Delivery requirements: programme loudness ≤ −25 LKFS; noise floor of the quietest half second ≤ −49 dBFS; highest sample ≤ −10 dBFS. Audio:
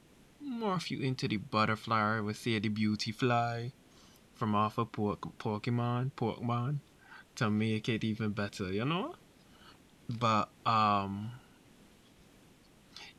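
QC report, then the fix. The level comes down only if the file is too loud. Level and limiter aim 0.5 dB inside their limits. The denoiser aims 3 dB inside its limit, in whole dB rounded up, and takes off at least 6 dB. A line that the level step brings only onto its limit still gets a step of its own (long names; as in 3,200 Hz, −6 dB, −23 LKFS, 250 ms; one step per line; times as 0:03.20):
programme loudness −33.5 LKFS: in spec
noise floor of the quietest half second −61 dBFS: in spec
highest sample −16.5 dBFS: in spec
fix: no processing needed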